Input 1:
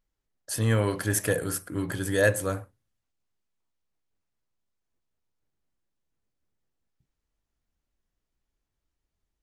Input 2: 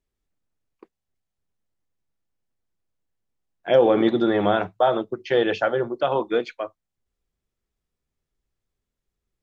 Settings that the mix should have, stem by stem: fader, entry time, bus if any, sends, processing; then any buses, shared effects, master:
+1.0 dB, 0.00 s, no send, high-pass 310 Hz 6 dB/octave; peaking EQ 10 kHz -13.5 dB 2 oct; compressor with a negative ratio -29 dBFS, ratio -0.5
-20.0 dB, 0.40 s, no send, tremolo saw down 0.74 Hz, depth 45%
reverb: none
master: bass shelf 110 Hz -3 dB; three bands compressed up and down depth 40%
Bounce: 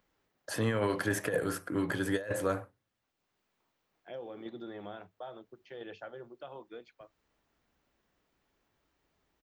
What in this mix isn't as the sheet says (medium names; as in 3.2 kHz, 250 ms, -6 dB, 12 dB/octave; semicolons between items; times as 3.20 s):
stem 2 -20.0 dB -> -28.0 dB; master: missing bass shelf 110 Hz -3 dB